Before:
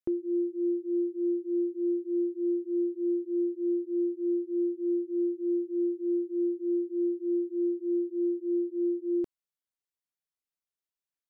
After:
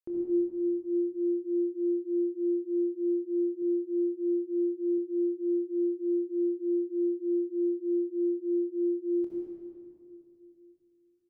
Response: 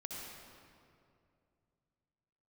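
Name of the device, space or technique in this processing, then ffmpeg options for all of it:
stairwell: -filter_complex "[1:a]atrim=start_sample=2205[link_01];[0:a][link_01]afir=irnorm=-1:irlink=0,asettb=1/sr,asplit=3[link_02][link_03][link_04];[link_02]atrim=end=3.624[link_05];[link_03]atrim=start=3.62:end=4.98,asetpts=PTS-STARTPTS,afade=type=in:duration=0.004:curve=qsin,afade=type=out:start_time=1.356:duration=0.004:curve=qsin,highpass=frequency=51:width=0.5412,highpass=frequency=51:width=1.3066[link_06];[link_04]atrim=start=4.976[link_07];[link_05][link_06]acrossfade=duration=0.004:curve1=hsin:curve2=qsin[link_08];[link_08][link_07]acrossfade=duration=0.004:curve1=qsin:curve2=hsin,aecho=1:1:26|40:0.316|0.224,volume=-3dB"

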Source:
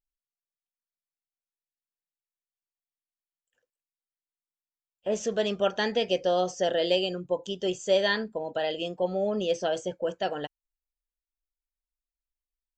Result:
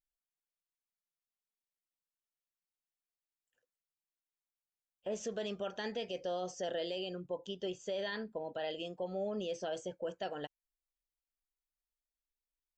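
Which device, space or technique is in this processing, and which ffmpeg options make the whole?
stacked limiters: -filter_complex "[0:a]asettb=1/sr,asplit=3[link_01][link_02][link_03];[link_01]atrim=end=6.984[link_04];[link_02]atrim=start=6.98:end=8.68,asetpts=PTS-STARTPTS,afade=type=in:duration=0.004:curve=qsin,afade=type=out:start_time=1.696:duration=0.004:curve=qsin,lowpass=5300[link_05];[link_03]atrim=start=8.676[link_06];[link_04][link_05]acrossfade=duration=0.004:curve1=hsin:curve2=qsin[link_07];[link_07][link_06]acrossfade=duration=0.004:curve1=qsin:curve2=hsin,alimiter=limit=-19dB:level=0:latency=1:release=22,alimiter=limit=-23.5dB:level=0:latency=1:release=252,volume=-6dB"

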